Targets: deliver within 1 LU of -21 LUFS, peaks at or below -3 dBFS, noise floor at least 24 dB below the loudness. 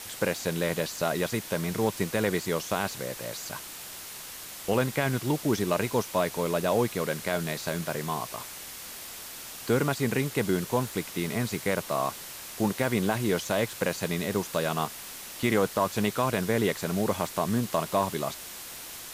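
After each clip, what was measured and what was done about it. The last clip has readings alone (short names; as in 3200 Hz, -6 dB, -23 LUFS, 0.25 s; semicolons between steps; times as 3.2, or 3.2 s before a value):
noise floor -42 dBFS; noise floor target -54 dBFS; loudness -29.5 LUFS; peak -11.0 dBFS; loudness target -21.0 LUFS
-> denoiser 12 dB, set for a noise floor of -42 dBFS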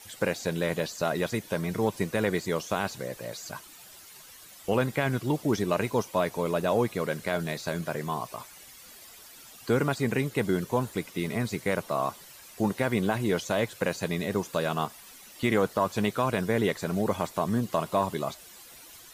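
noise floor -50 dBFS; noise floor target -53 dBFS
-> denoiser 6 dB, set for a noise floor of -50 dBFS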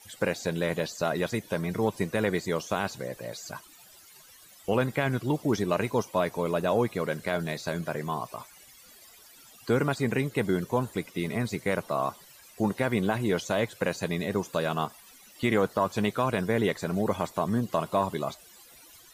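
noise floor -54 dBFS; loudness -29.0 LUFS; peak -11.5 dBFS; loudness target -21.0 LUFS
-> gain +8 dB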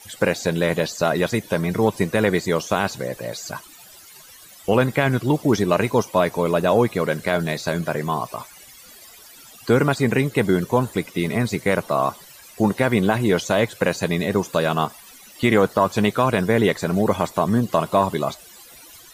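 loudness -21.0 LUFS; peak -3.5 dBFS; noise floor -46 dBFS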